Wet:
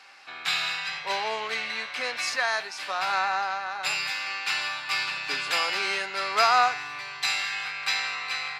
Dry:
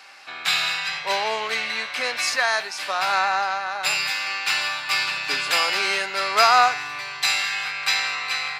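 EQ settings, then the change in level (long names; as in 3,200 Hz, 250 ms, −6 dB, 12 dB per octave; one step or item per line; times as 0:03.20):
high-shelf EQ 9,800 Hz −8.5 dB
notch filter 610 Hz, Q 17
−4.5 dB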